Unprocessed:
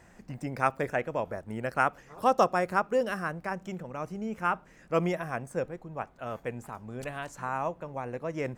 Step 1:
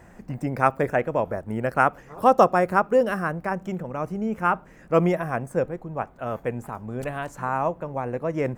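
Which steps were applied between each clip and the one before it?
parametric band 4,900 Hz −8.5 dB 2.5 octaves
level +8 dB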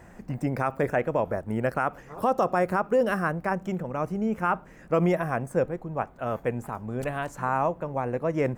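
brickwall limiter −14 dBFS, peak gain reduction 10.5 dB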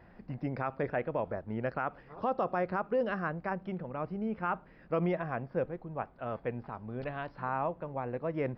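downsampling to 11,025 Hz
level −7.5 dB

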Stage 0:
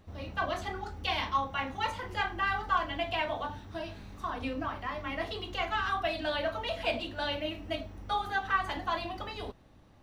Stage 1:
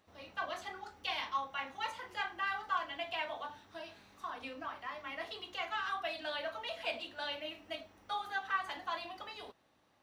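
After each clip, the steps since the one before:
high-pass filter 740 Hz 6 dB per octave
level −4.5 dB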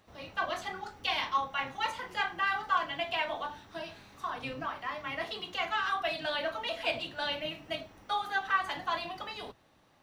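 sub-octave generator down 1 octave, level −3 dB
level +6 dB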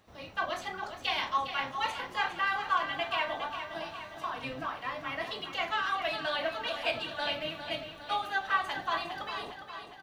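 repeating echo 408 ms, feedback 59%, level −9.5 dB

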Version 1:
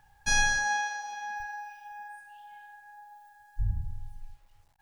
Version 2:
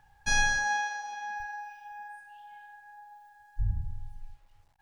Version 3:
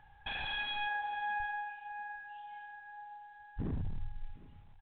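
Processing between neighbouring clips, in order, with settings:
high-shelf EQ 6,400 Hz −6.5 dB
wave folding −31 dBFS; single-tap delay 755 ms −21 dB; level +1 dB; mu-law 64 kbit/s 8,000 Hz

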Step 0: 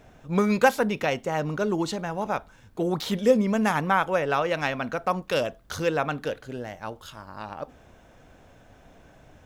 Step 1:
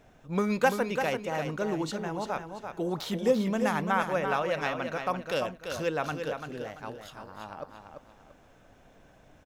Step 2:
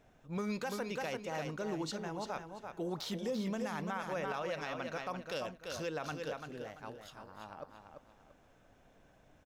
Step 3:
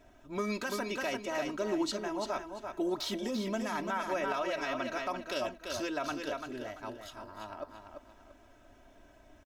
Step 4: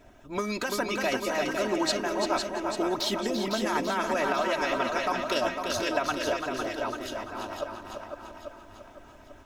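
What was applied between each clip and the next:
parametric band 70 Hz −3.5 dB 1.5 octaves; on a send: repeating echo 340 ms, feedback 30%, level −7 dB; on the sum: level −5 dB
dynamic equaliser 5,100 Hz, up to +6 dB, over −53 dBFS, Q 1.4; brickwall limiter −21 dBFS, peak gain reduction 11 dB; level −7 dB
comb filter 3.1 ms, depth 85%; level +3 dB
harmonic and percussive parts rebalanced percussive +7 dB; on a send: feedback echo with a long and a short gap by turns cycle 842 ms, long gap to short 1.5 to 1, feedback 30%, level −6 dB; on the sum: level +2 dB

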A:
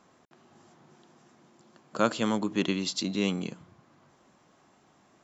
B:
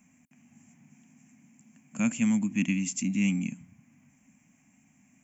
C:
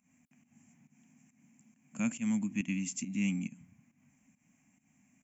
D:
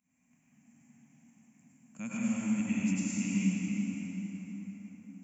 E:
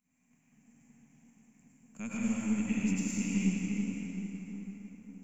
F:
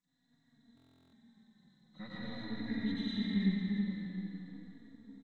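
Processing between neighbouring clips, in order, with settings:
drawn EQ curve 120 Hz 0 dB, 170 Hz +3 dB, 260 Hz +7 dB, 370 Hz −24 dB, 760 Hz −11 dB, 1,300 Hz −17 dB, 2,400 Hz +7 dB, 4,000 Hz −25 dB, 6,500 Hz +5 dB, 9,200 Hz +9 dB
fake sidechain pumping 138 BPM, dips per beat 1, −14 dB, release 169 ms; level −5.5 dB
dense smooth reverb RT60 5 s, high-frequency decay 0.6×, pre-delay 85 ms, DRR −9.5 dB; level −8 dB
gain on one half-wave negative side −3 dB; level +1 dB
hearing-aid frequency compression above 1,200 Hz 1.5 to 1; buffer that repeats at 0:00.75, samples 1,024, times 15; barber-pole flanger 3.6 ms −0.45 Hz

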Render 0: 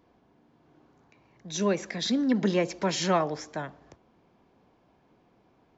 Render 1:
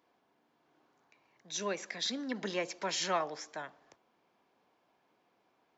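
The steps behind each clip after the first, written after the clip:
high-pass filter 890 Hz 6 dB per octave
level −3 dB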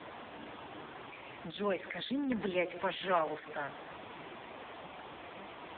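converter with a step at zero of −37 dBFS
level +1 dB
AMR narrowband 5.15 kbit/s 8,000 Hz

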